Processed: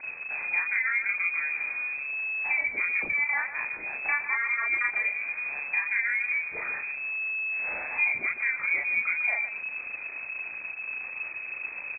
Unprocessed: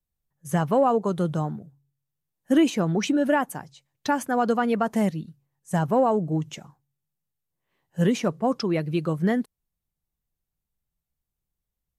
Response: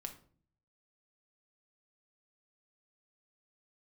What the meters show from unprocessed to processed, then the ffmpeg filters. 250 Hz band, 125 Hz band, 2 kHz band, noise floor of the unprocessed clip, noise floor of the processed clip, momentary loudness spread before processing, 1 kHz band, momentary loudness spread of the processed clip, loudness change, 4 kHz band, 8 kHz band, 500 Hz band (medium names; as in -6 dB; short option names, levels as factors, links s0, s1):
under -30 dB, under -30 dB, +13.0 dB, under -85 dBFS, -39 dBFS, 13 LU, -12.0 dB, 9 LU, -3.0 dB, under -40 dB, under -40 dB, -23.5 dB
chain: -af "aeval=exprs='val(0)+0.5*0.0282*sgn(val(0))':c=same,acompressor=threshold=0.0398:ratio=5,aecho=1:1:34.99|151.6:0.891|0.316,lowpass=f=2200:t=q:w=0.5098,lowpass=f=2200:t=q:w=0.6013,lowpass=f=2200:t=q:w=0.9,lowpass=f=2200:t=q:w=2.563,afreqshift=-2600"